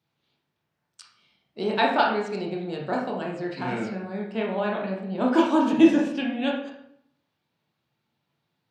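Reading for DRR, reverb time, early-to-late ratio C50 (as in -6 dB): -1.5 dB, 0.70 s, 4.0 dB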